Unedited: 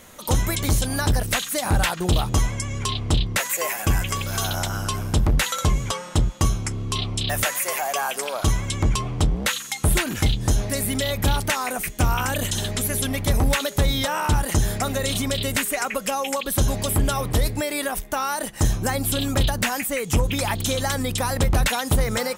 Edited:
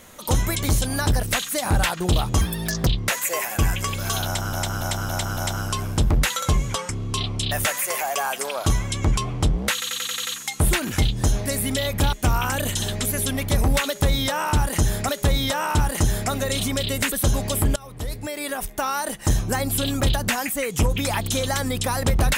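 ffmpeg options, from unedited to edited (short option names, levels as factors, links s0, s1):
-filter_complex "[0:a]asplit=18[s0][s1][s2][s3][s4][s5][s6][s7][s8][s9][s10][s11][s12][s13][s14][s15][s16][s17];[s0]atrim=end=2.414[s18];[s1]atrim=start=2.41:end=3.15,asetpts=PTS-STARTPTS,asetrate=71001,aresample=44100[s19];[s2]atrim=start=3.146:end=4.812[s20];[s3]atrim=start=4.528:end=4.812[s21];[s4]atrim=start=4.528:end=4.812[s22];[s5]atrim=start=4.528:end=4.812[s23];[s6]atrim=start=4.528:end=6.052[s24];[s7]atrim=start=6.668:end=9.602[s25];[s8]atrim=start=9.508:end=9.602[s26];[s9]atrim=start=9.508:end=9.602[s27];[s10]atrim=start=9.508:end=9.602[s28];[s11]atrim=start=9.508:end=9.602[s29];[s12]atrim=start=9.508:end=9.602[s30];[s13]atrim=start=9.508:end=11.372[s31];[s14]atrim=start=11.888:end=14.852[s32];[s15]atrim=start=13.628:end=15.662[s33];[s16]atrim=start=16.458:end=17.1,asetpts=PTS-STARTPTS,afade=t=out:st=0.638:d=0.004:c=hsin:silence=0.0794328[s34];[s17]atrim=start=17.1,asetpts=PTS-STARTPTS,afade=t=in:d=1.02:silence=0.0794328[s35];[s18][s19]acrossfade=d=0.004:c1=hsin:c2=hsin[s36];[s36][s20]acrossfade=d=0.004:c1=hsin:c2=hsin[s37];[s37][s21]acrossfade=d=0.004:c1=hsin:c2=hsin[s38];[s38][s22]acrossfade=d=0.004:c1=hsin:c2=hsin[s39];[s39][s23]acrossfade=d=0.004:c1=hsin:c2=hsin[s40];[s40][s24]acrossfade=d=0.004:c1=hsin:c2=hsin[s41];[s41][s25]acrossfade=d=0.004:c1=hsin:c2=hsin[s42];[s42][s26]acrossfade=d=0.004:c1=hsin:c2=hsin[s43];[s43][s27]acrossfade=d=0.004:c1=hsin:c2=hsin[s44];[s44][s28]acrossfade=d=0.004:c1=hsin:c2=hsin[s45];[s45][s29]acrossfade=d=0.004:c1=hsin:c2=hsin[s46];[s46][s30]acrossfade=d=0.004:c1=hsin:c2=hsin[s47];[s47][s31]acrossfade=d=0.004:c1=hsin:c2=hsin[s48];[s48][s32]acrossfade=d=0.004:c1=hsin:c2=hsin[s49];[s49][s33]acrossfade=d=0.004:c1=hsin:c2=hsin[s50];[s34][s35]concat=n=2:v=0:a=1[s51];[s50][s51]acrossfade=d=0.004:c1=hsin:c2=hsin"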